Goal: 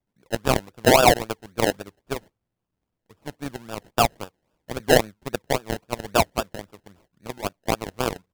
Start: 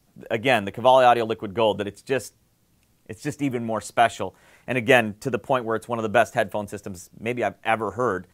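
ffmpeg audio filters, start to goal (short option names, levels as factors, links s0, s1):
-af "acrusher=samples=30:mix=1:aa=0.000001:lfo=1:lforange=18:lforate=3.7,aeval=exprs='0.596*(cos(1*acos(clip(val(0)/0.596,-1,1)))-cos(1*PI/2))+0.075*(cos(7*acos(clip(val(0)/0.596,-1,1)))-cos(7*PI/2))':c=same"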